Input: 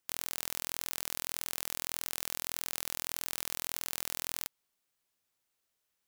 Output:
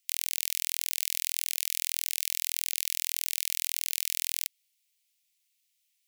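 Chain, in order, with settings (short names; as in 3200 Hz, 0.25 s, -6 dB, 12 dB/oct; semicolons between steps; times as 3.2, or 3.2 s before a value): steep high-pass 2100 Hz 48 dB/oct; gain +7 dB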